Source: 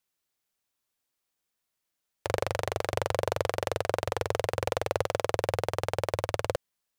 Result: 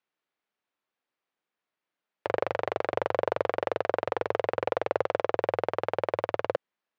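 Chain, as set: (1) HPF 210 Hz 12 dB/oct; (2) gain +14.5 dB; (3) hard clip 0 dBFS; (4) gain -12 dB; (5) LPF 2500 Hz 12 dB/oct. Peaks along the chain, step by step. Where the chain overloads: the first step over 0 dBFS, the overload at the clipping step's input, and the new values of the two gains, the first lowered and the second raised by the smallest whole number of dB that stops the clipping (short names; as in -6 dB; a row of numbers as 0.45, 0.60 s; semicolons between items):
-10.0, +4.5, 0.0, -12.0, -11.5 dBFS; step 2, 4.5 dB; step 2 +9.5 dB, step 4 -7 dB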